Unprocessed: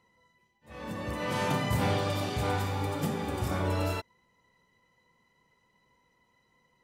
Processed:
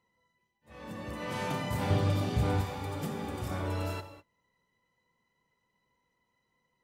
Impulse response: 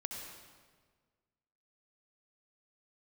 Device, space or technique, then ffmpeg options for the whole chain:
keyed gated reverb: -filter_complex "[0:a]asettb=1/sr,asplit=3[s0][s1][s2];[s0]atrim=end=1.904[s3];[s1]atrim=start=1.9:end=2.61,asetpts=PTS-STARTPTS,afade=t=in:d=0.004:c=qsin,afade=t=out:st=0.706:d=0.004:c=qsin,lowshelf=f=310:g=11[s4];[s2]atrim=start=2.606[s5];[s3][s4]acrossfade=d=0.004:c1=hsin:c2=qsin[s6];[s6][s5]acrossfade=d=0.004:c1=qsin:c2=hsin,asplit=3[s7][s8][s9];[1:a]atrim=start_sample=2205[s10];[s8][s10]afir=irnorm=-1:irlink=0[s11];[s9]apad=whole_len=301639[s12];[s11][s12]sidechaingate=range=0.0224:threshold=0.00126:ratio=16:detection=peak,volume=0.596[s13];[s7][s13]amix=inputs=2:normalize=0,volume=0.398"

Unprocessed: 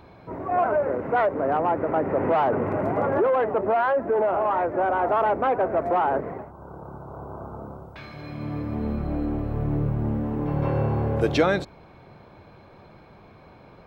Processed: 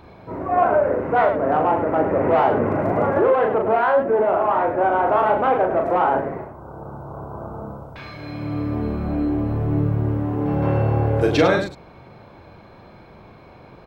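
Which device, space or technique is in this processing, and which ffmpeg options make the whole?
slapback doubling: -filter_complex "[0:a]asplit=3[s0][s1][s2];[s1]adelay=38,volume=0.631[s3];[s2]adelay=102,volume=0.376[s4];[s0][s3][s4]amix=inputs=3:normalize=0,volume=1.33"

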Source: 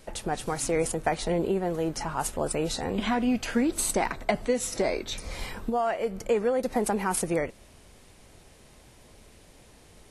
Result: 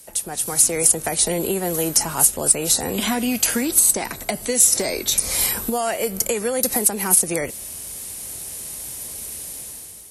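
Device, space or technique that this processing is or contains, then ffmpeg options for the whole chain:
FM broadcast chain: -filter_complex "[0:a]highpass=47,dynaudnorm=f=180:g=7:m=4.47,acrossover=split=180|700|1500|8000[s0][s1][s2][s3][s4];[s0]acompressor=threshold=0.0316:ratio=4[s5];[s1]acompressor=threshold=0.126:ratio=4[s6];[s2]acompressor=threshold=0.0282:ratio=4[s7];[s3]acompressor=threshold=0.0447:ratio=4[s8];[s4]acompressor=threshold=0.02:ratio=4[s9];[s5][s6][s7][s8][s9]amix=inputs=5:normalize=0,aemphasis=mode=production:type=50fm,alimiter=limit=0.398:level=0:latency=1:release=294,asoftclip=type=hard:threshold=0.299,lowpass=f=15000:w=0.5412,lowpass=f=15000:w=1.3066,aemphasis=mode=production:type=50fm,volume=0.668"

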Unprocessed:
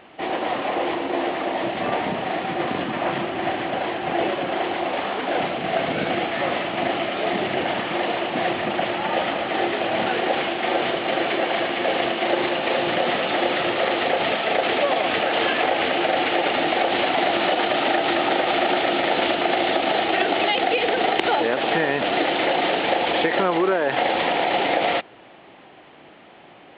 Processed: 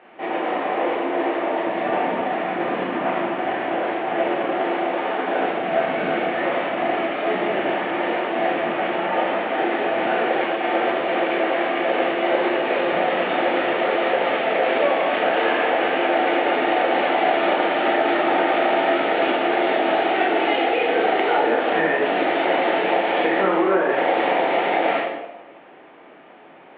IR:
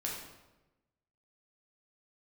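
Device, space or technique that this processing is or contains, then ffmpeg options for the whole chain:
bathroom: -filter_complex "[0:a]acrossover=split=220 2900:gain=0.2 1 0.0891[s0][s1][s2];[s0][s1][s2]amix=inputs=3:normalize=0[s3];[1:a]atrim=start_sample=2205[s4];[s3][s4]afir=irnorm=-1:irlink=0"

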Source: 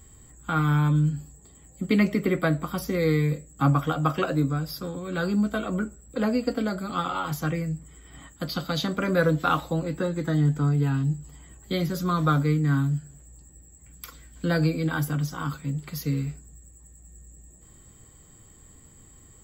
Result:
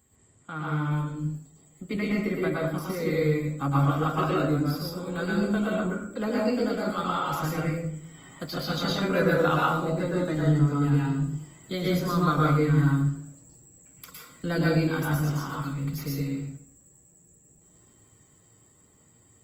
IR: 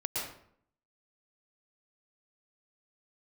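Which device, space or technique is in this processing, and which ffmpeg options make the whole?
far-field microphone of a smart speaker: -filter_complex "[1:a]atrim=start_sample=2205[s0];[0:a][s0]afir=irnorm=-1:irlink=0,highpass=120,dynaudnorm=f=400:g=17:m=3.76,volume=0.355" -ar 48000 -c:a libopus -b:a 24k

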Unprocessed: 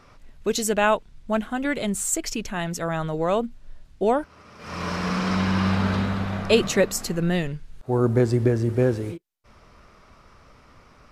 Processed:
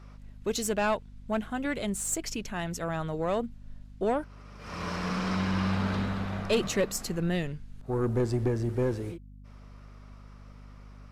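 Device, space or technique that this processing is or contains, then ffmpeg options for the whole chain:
valve amplifier with mains hum: -af "aeval=exprs='(tanh(4.47*val(0)+0.25)-tanh(0.25))/4.47':c=same,aeval=exprs='val(0)+0.00794*(sin(2*PI*50*n/s)+sin(2*PI*2*50*n/s)/2+sin(2*PI*3*50*n/s)/3+sin(2*PI*4*50*n/s)/4+sin(2*PI*5*50*n/s)/5)':c=same,volume=0.562"

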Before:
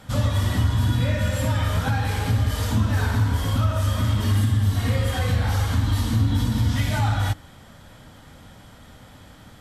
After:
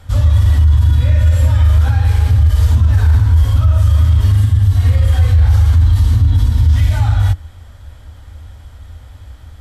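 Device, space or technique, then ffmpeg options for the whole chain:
car stereo with a boomy subwoofer: -af "lowshelf=f=110:t=q:w=3:g=12.5,alimiter=limit=0.631:level=0:latency=1:release=20"

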